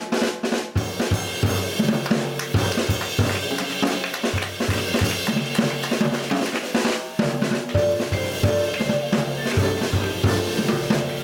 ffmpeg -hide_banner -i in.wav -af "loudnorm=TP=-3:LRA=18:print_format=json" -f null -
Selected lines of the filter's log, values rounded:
"input_i" : "-22.4",
"input_tp" : "-6.7",
"input_lra" : "0.7",
"input_thresh" : "-32.4",